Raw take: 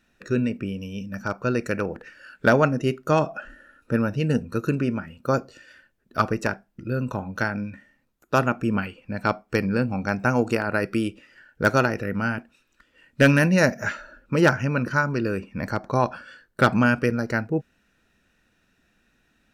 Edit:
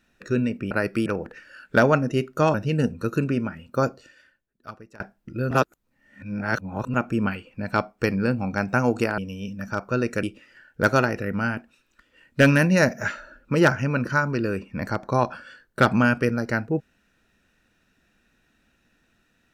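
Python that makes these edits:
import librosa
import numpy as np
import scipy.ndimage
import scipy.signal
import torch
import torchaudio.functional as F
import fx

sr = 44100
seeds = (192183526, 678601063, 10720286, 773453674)

y = fx.edit(x, sr, fx.swap(start_s=0.71, length_s=1.05, other_s=10.69, other_length_s=0.35),
    fx.cut(start_s=3.24, length_s=0.81),
    fx.fade_out_to(start_s=5.37, length_s=1.14, curve='qua', floor_db=-23.0),
    fx.reverse_span(start_s=7.02, length_s=1.43), tone=tone)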